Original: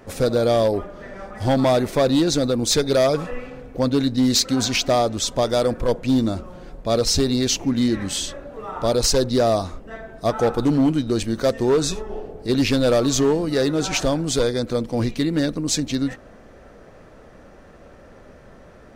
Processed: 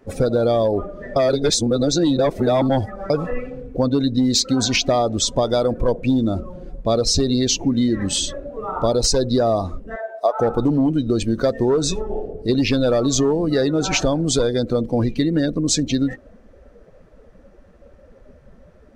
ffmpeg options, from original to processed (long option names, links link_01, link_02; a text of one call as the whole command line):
ffmpeg -i in.wav -filter_complex "[0:a]asettb=1/sr,asplit=3[link_01][link_02][link_03];[link_01]atrim=end=9.964[link_04];[link_02]atrim=start=9.96:end=10.4,asetpts=PTS-STARTPTS,afade=type=in:duration=0.004:curve=qsin,afade=type=out:start_time=0.436:duration=0.004:curve=qsin,highpass=frequency=630:width_type=q:width=1.8[link_05];[link_03]atrim=start=10.396[link_06];[link_04][link_05]acrossfade=duration=0.004:curve1=hsin:curve2=qsin[link_07];[link_07][link_06]acrossfade=duration=0.004:curve1=qsin:curve2=hsin,asplit=3[link_08][link_09][link_10];[link_08]atrim=end=1.162[link_11];[link_09]atrim=start=1.158:end=3.102,asetpts=PTS-STARTPTS,areverse[link_12];[link_10]atrim=start=3.098[link_13];[link_11][link_12]acrossfade=duration=0.004:curve1=hsin:curve2=hsin[link_14];[link_14][link_13]acrossfade=duration=0.004:curve1=hsin:curve2=hsin,acompressor=threshold=-20dB:ratio=6,afftdn=noise_reduction=15:noise_floor=-34,volume=5.5dB" out.wav